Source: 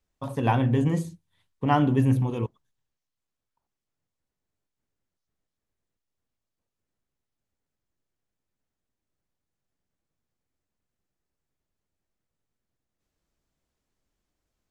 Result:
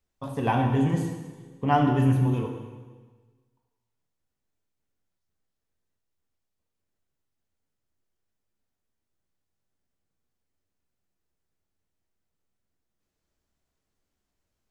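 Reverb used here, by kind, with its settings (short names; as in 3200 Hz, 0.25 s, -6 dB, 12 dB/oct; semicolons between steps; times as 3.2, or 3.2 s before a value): plate-style reverb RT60 1.4 s, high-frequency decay 0.95×, DRR 2 dB; gain -2 dB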